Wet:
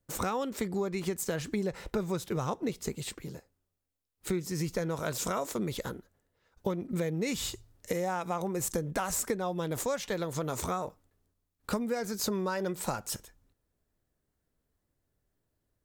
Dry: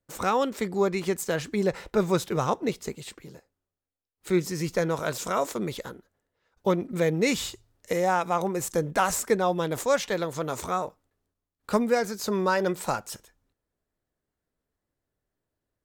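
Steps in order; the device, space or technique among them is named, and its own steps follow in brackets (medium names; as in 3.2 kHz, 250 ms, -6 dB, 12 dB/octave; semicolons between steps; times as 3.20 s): ASMR close-microphone chain (bass shelf 230 Hz +7 dB; compression, threshold -29 dBFS, peak gain reduction 13 dB; treble shelf 6 kHz +5 dB)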